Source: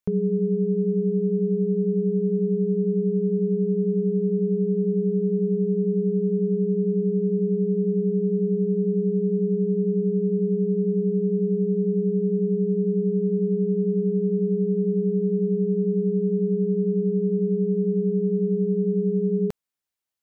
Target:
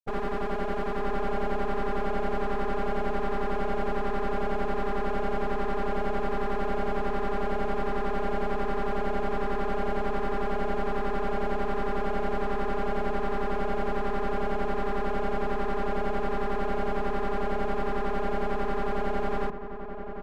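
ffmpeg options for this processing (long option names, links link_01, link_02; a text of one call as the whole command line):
ffmpeg -i in.wav -filter_complex "[0:a]afftfilt=real='re*gte(hypot(re,im),0.316)':imag='im*gte(hypot(re,im),0.316)':win_size=1024:overlap=0.75,acontrast=77,aeval=exprs='0.398*(cos(1*acos(clip(val(0)/0.398,-1,1)))-cos(1*PI/2))+0.2*(cos(3*acos(clip(val(0)/0.398,-1,1)))-cos(3*PI/2))+0.0501*(cos(6*acos(clip(val(0)/0.398,-1,1)))-cos(6*PI/2))+0.0562*(cos(7*acos(clip(val(0)/0.398,-1,1)))-cos(7*PI/2))':channel_layout=same,aeval=exprs='max(val(0),0)':channel_layout=same,asplit=2[link_01][link_02];[link_02]adelay=932.9,volume=-7dB,highshelf=frequency=4000:gain=-21[link_03];[link_01][link_03]amix=inputs=2:normalize=0,volume=-8.5dB" out.wav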